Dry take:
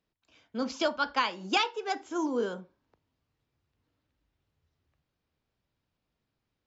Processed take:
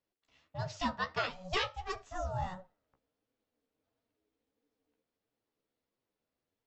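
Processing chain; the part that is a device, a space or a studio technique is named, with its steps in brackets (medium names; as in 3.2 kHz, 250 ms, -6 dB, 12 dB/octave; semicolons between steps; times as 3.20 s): alien voice (ring modulator 370 Hz; flange 1.5 Hz, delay 7.2 ms, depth 8.7 ms, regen +28%)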